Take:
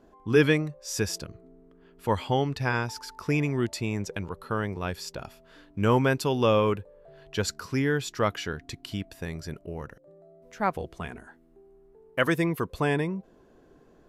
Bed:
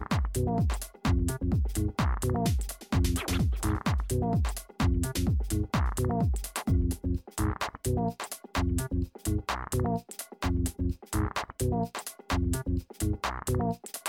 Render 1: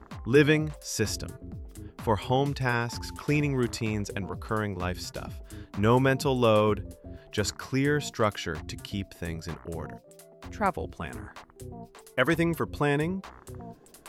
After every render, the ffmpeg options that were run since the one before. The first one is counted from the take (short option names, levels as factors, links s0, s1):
-filter_complex "[1:a]volume=0.2[s0];[0:a][s0]amix=inputs=2:normalize=0"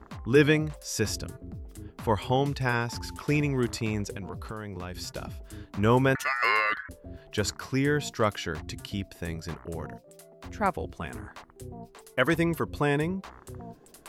-filter_complex "[0:a]asettb=1/sr,asplit=3[s0][s1][s2];[s0]atrim=end=4.154[s3];[s1]atrim=start=4.15:end=4.98,asetpts=PTS-STARTPTS,afade=t=in:d=0.004:c=qsin,afade=t=out:st=0.826:d=0.004:c=qsin,acompressor=threshold=0.0251:ratio=10:attack=3.2:release=140:knee=1:detection=peak[s4];[s2]atrim=start=4.976[s5];[s3][s4]acrossfade=d=0.004:c1=hsin:c2=qsin[s6];[s6][s5]acrossfade=d=0.004:c1=qsin:c2=hsin,asettb=1/sr,asplit=3[s7][s8][s9];[s7]atrim=end=6.154[s10];[s8]atrim=start=6.15:end=6.89,asetpts=PTS-STARTPTS,afade=t=in:d=0.004:c=qsin,afade=t=out:st=0.736:d=0.004:c=qsin,aeval=exprs='val(0)*sin(2*PI*1600*n/s)':c=same[s11];[s9]atrim=start=6.886[s12];[s10][s11]acrossfade=d=0.004:c1=hsin:c2=qsin[s13];[s13][s12]acrossfade=d=0.004:c1=qsin:c2=hsin"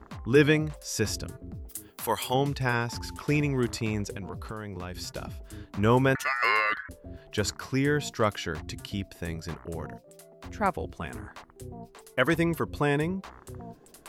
-filter_complex "[0:a]asplit=3[s0][s1][s2];[s0]afade=t=out:st=1.68:d=0.02[s3];[s1]aemphasis=mode=production:type=riaa,afade=t=in:st=1.68:d=0.02,afade=t=out:st=2.33:d=0.02[s4];[s2]afade=t=in:st=2.33:d=0.02[s5];[s3][s4][s5]amix=inputs=3:normalize=0"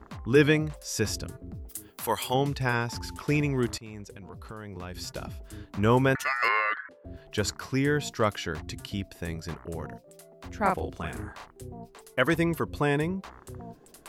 -filter_complex "[0:a]asettb=1/sr,asplit=3[s0][s1][s2];[s0]atrim=end=6.484[s3];[s1]atrim=start=6.48:end=7.05,asetpts=PTS-STARTPTS,afade=t=in:d=0.004:c=qsin,afade=t=out:st=0.566:d=0.004:c=qsin,highpass=420,lowpass=2600[s4];[s2]atrim=start=7.046[s5];[s3][s4]acrossfade=d=0.004:c1=hsin:c2=qsin[s6];[s6][s5]acrossfade=d=0.004:c1=qsin:c2=hsin,asettb=1/sr,asplit=3[s7][s8][s9];[s7]atrim=end=10.614[s10];[s8]atrim=start=10.61:end=11.5,asetpts=PTS-STARTPTS,afade=t=in:d=0.004:c=qsin,afade=t=out:st=0.886:d=0.004:c=qsin,asplit=2[s11][s12];[s12]adelay=38,volume=0.708[s13];[s11][s13]amix=inputs=2:normalize=0,atrim=end_sample=39249[s14];[s9]atrim=start=11.496[s15];[s10][s14]acrossfade=d=0.004:c1=hsin:c2=qsin[s16];[s16][s15]acrossfade=d=0.004:c1=qsin:c2=hsin,asplit=2[s17][s18];[s17]atrim=end=3.78,asetpts=PTS-STARTPTS,afade=t=out:st=3.776:d=0.004:c=hsin:silence=0.149624[s19];[s18]atrim=start=3.78,asetpts=PTS-STARTPTS,afade=t=in:d=1.31:silence=0.149624[s20];[s19][s20]concat=n=2:v=0:a=1"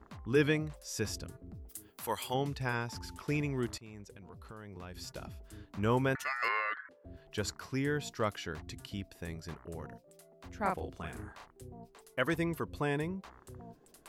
-af "volume=0.422"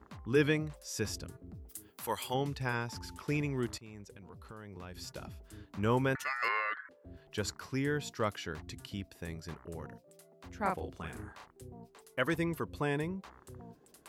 -af "highpass=50,bandreject=f=680:w=18"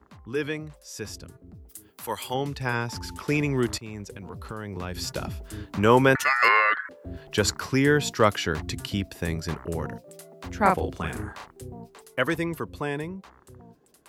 -filter_complex "[0:a]acrossover=split=270[s0][s1];[s0]alimiter=level_in=3.35:limit=0.0631:level=0:latency=1,volume=0.299[s2];[s2][s1]amix=inputs=2:normalize=0,dynaudnorm=f=550:g=11:m=5.01"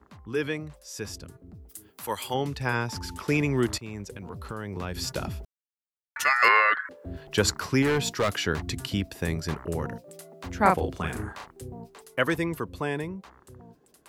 -filter_complex "[0:a]asettb=1/sr,asplit=3[s0][s1][s2];[s0]atrim=end=7.824[s3];[s1]atrim=start=7.82:end=8.46,asetpts=PTS-STARTPTS,afade=t=in:d=0.004:c=qsin,afade=t=out:st=0.636:d=0.004:c=qsin,asoftclip=type=hard:threshold=0.0944[s4];[s2]atrim=start=8.456[s5];[s3][s4]acrossfade=d=0.004:c1=hsin:c2=qsin[s6];[s6][s5]acrossfade=d=0.004:c1=qsin:c2=hsin,asplit=3[s7][s8][s9];[s7]atrim=end=5.45,asetpts=PTS-STARTPTS,afade=t=out:st=5.446:d=0.004:c=hsin[s10];[s8]atrim=start=5.45:end=6.16,asetpts=PTS-STARTPTS,volume=0[s11];[s9]atrim=start=6.16,asetpts=PTS-STARTPTS,afade=t=in:d=0.004:c=hsin[s12];[s10][s11][s12]concat=n=3:v=0:a=1"